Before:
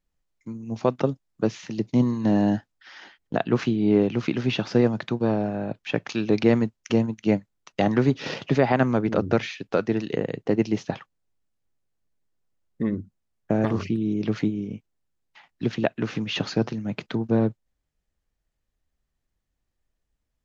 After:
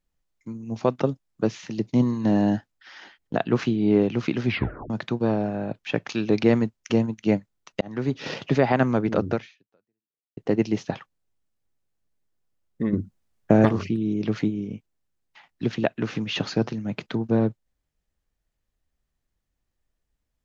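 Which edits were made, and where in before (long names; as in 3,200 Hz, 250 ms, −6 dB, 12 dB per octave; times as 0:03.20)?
0:04.46: tape stop 0.44 s
0:07.81–0:08.49: fade in equal-power
0:09.30–0:10.37: fade out exponential
0:12.93–0:13.69: clip gain +6 dB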